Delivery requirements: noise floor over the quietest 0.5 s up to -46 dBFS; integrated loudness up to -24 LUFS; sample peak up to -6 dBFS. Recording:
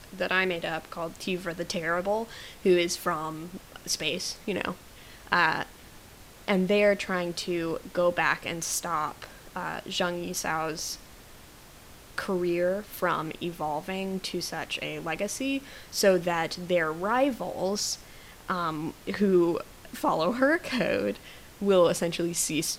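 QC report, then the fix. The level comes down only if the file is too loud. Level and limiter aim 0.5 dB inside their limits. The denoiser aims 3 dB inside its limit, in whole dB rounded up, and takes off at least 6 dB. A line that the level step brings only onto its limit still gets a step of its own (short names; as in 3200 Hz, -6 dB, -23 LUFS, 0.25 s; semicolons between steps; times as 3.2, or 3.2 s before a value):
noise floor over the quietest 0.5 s -50 dBFS: OK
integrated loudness -28.0 LUFS: OK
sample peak -7.0 dBFS: OK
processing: none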